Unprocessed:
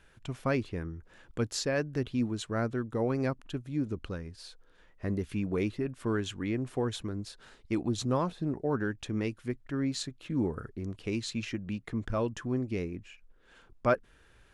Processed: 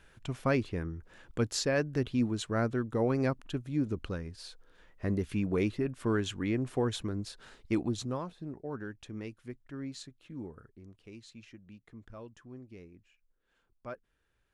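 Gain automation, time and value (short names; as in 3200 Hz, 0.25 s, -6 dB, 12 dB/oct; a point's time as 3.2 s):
7.77 s +1 dB
8.25 s -9 dB
9.87 s -9 dB
11.09 s -16.5 dB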